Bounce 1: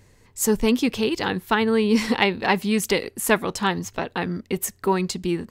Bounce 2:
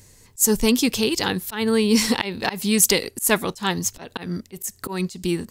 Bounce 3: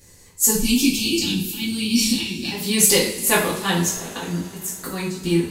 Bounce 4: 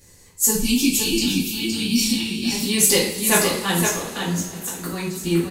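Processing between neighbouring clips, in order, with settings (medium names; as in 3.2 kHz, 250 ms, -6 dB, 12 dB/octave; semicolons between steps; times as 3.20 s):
tone controls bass +2 dB, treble +14 dB; slow attack 158 ms
time-frequency box 0.51–2.51 s, 380–2200 Hz -21 dB; two-slope reverb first 0.46 s, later 4.4 s, from -22 dB, DRR -7.5 dB; trim -5.5 dB
delay 516 ms -5.5 dB; trim -1 dB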